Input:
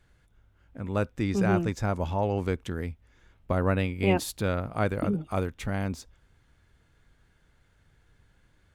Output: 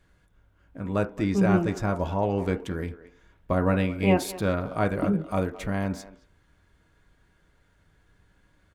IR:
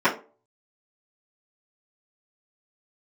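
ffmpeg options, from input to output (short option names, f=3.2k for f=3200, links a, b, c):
-filter_complex "[0:a]asplit=2[a][b];[b]adelay=220,highpass=300,lowpass=3.4k,asoftclip=type=hard:threshold=-22dB,volume=-15dB[c];[a][c]amix=inputs=2:normalize=0,asplit=2[d][e];[1:a]atrim=start_sample=2205,lowpass=2.7k[f];[e][f]afir=irnorm=-1:irlink=0,volume=-22.5dB[g];[d][g]amix=inputs=2:normalize=0"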